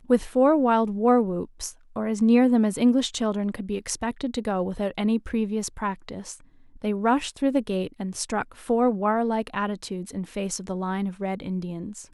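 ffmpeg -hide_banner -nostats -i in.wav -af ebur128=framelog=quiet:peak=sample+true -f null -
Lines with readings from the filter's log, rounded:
Integrated loudness:
  I:         -25.0 LUFS
  Threshold: -35.3 LUFS
Loudness range:
  LRA:         6.1 LU
  Threshold: -45.6 LUFS
  LRA low:   -28.5 LUFS
  LRA high:  -22.3 LUFS
Sample peak:
  Peak:       -7.2 dBFS
True peak:
  Peak:       -7.2 dBFS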